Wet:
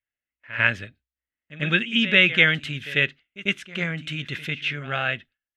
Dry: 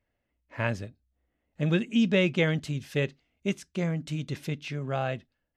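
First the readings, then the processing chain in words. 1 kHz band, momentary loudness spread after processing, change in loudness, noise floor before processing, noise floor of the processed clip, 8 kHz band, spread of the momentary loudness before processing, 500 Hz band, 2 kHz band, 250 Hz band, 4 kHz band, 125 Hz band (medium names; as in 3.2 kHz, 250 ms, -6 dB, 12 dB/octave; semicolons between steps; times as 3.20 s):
+4.0 dB, 14 LU, +7.0 dB, -80 dBFS, under -85 dBFS, no reading, 11 LU, -1.5 dB, +14.0 dB, -1.5 dB, +13.0 dB, -1.5 dB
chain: gate with hold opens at -42 dBFS; high-order bell 2.2 kHz +15.5 dB; on a send: reverse echo 96 ms -15.5 dB; on the sum: trim -1.5 dB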